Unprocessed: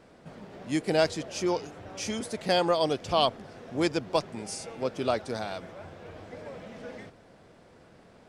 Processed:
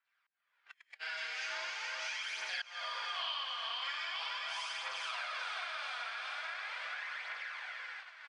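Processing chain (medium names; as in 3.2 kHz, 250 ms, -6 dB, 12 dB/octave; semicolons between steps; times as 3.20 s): backward echo that repeats 217 ms, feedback 74%, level -5 dB; Schroeder reverb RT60 1.4 s, combs from 32 ms, DRR -9 dB; slow attack 661 ms; high-pass 1.4 kHz 24 dB/octave; feedback delay 600 ms, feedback 51%, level -15 dB; phaser 0.41 Hz, delay 4.5 ms, feedback 40%; low-pass 2.9 kHz 12 dB/octave; gate -50 dBFS, range -25 dB; compression 5:1, threshold -42 dBFS, peak gain reduction 19 dB; trim +3.5 dB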